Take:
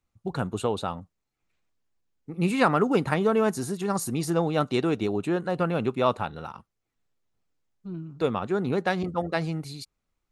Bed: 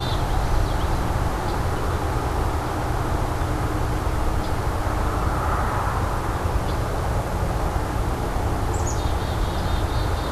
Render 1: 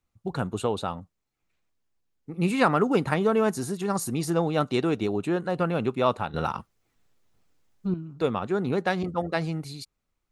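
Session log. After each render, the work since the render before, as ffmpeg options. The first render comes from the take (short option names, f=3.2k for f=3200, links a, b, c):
-filter_complex "[0:a]asplit=3[a][b][c];[a]atrim=end=6.342[d];[b]atrim=start=6.338:end=7.942,asetpts=PTS-STARTPTS,volume=10dB[e];[c]atrim=start=7.938[f];[d][e]acrossfade=d=0.004:c1=hsin:c2=hsin[g];[g][f]acrossfade=d=0.004:c1=hsin:c2=hsin"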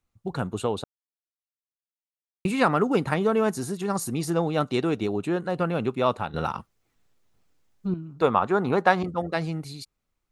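-filter_complex "[0:a]asettb=1/sr,asplit=3[a][b][c];[a]atrim=end=8.224[d];[b]atrim=start=8.22:end=9.03,asetpts=PTS-STARTPTS,afade=t=in:d=0.004:c=qsin,afade=t=out:st=0.806:d=0.004:c=qsin,equalizer=f=1k:t=o:w=1.6:g=11[e];[c]atrim=start=9.026[f];[d][e]acrossfade=d=0.004:c1=hsin:c2=qsin[g];[g][f]acrossfade=d=0.004:c1=qsin:c2=hsin,asplit=3[h][i][j];[h]atrim=end=0.84,asetpts=PTS-STARTPTS,afade=t=out:st=0.836:d=0.004:c=hsin[k];[i]atrim=start=0.84:end=2.45,asetpts=PTS-STARTPTS,volume=0[l];[j]atrim=start=2.45,asetpts=PTS-STARTPTS,afade=t=in:d=0.004:c=hsin[m];[k][l][m]concat=n=3:v=0:a=1"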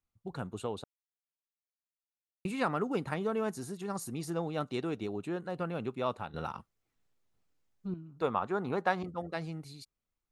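-af "volume=-10dB"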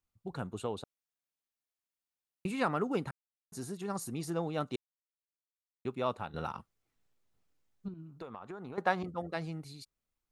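-filter_complex "[0:a]asettb=1/sr,asplit=3[a][b][c];[a]atrim=end=7.884[d];[b]atrim=start=7.88:end=8.78,asetpts=PTS-STARTPTS,afade=t=in:d=0.004:c=qsin,afade=t=out:st=0.896:d=0.004:c=qsin,acompressor=threshold=-40dB:ratio=16:attack=3.2:release=140:knee=1:detection=peak[e];[c]atrim=start=8.776[f];[d][e]acrossfade=d=0.004:c1=hsin:c2=qsin[g];[g][f]acrossfade=d=0.004:c1=qsin:c2=hsin,asplit=5[h][i][j][k][l];[h]atrim=end=3.11,asetpts=PTS-STARTPTS,afade=t=out:st=3.106:d=0.004:c=hsin[m];[i]atrim=start=3.11:end=3.52,asetpts=PTS-STARTPTS,volume=0[n];[j]atrim=start=3.52:end=4.76,asetpts=PTS-STARTPTS,afade=t=in:d=0.004:c=hsin,afade=t=out:st=1.236:d=0.004:c=hsin[o];[k]atrim=start=4.76:end=5.85,asetpts=PTS-STARTPTS,volume=0[p];[l]atrim=start=5.85,asetpts=PTS-STARTPTS,afade=t=in:d=0.004:c=hsin[q];[m][n][o][p][q]concat=n=5:v=0:a=1"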